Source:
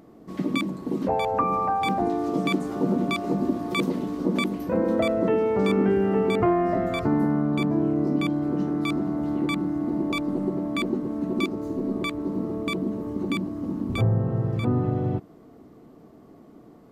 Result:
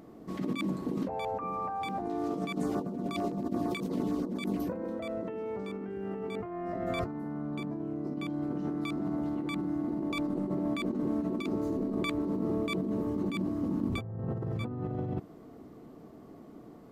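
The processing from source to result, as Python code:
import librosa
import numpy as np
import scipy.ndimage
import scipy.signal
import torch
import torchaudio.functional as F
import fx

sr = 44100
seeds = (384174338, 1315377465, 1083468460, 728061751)

y = fx.over_compress(x, sr, threshold_db=-29.0, ratio=-1.0)
y = fx.filter_lfo_notch(y, sr, shape='saw_down', hz=8.8, low_hz=890.0, high_hz=4000.0, q=1.4, at=(2.52, 4.73))
y = y * 10.0 ** (-4.5 / 20.0)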